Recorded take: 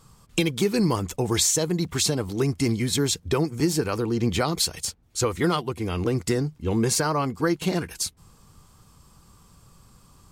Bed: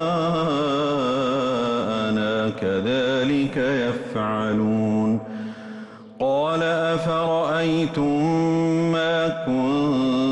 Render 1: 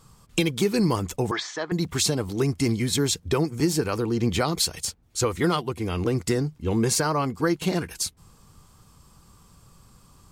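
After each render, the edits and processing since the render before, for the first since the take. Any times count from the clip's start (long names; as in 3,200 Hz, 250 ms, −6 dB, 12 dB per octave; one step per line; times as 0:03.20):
0:01.31–0:01.72: loudspeaker in its box 420–4,100 Hz, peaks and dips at 500 Hz −8 dB, 700 Hz +3 dB, 1,200 Hz +6 dB, 1,700 Hz +8 dB, 2,700 Hz −8 dB, 4,000 Hz −5 dB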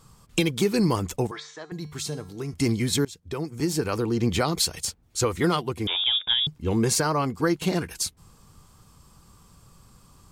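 0:01.27–0:02.54: tuned comb filter 150 Hz, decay 0.55 s, harmonics odd, mix 70%
0:03.05–0:03.95: fade in, from −23.5 dB
0:05.87–0:06.47: voice inversion scrambler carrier 3,600 Hz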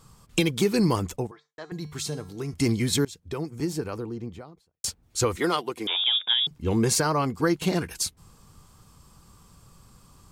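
0:00.96–0:01.58: fade out and dull
0:03.06–0:04.84: fade out and dull
0:05.37–0:06.51: high-pass filter 300 Hz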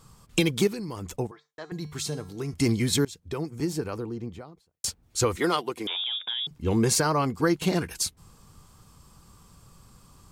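0:00.67–0:01.17: downward compressor, threshold −32 dBFS
0:05.74–0:06.54: downward compressor, threshold −27 dBFS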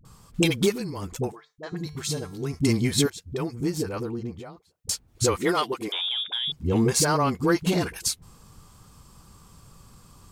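in parallel at −9.5 dB: soft clipping −23.5 dBFS, distortion −10 dB
on the sum: all-pass dispersion highs, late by 51 ms, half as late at 410 Hz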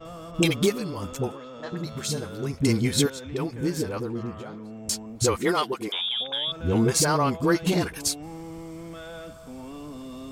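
mix in bed −19 dB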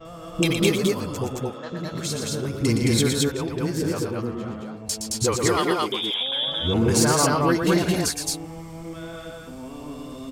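loudspeakers that aren't time-aligned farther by 40 metres −6 dB, 75 metres −1 dB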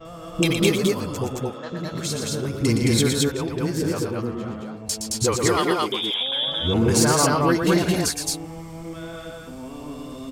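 level +1 dB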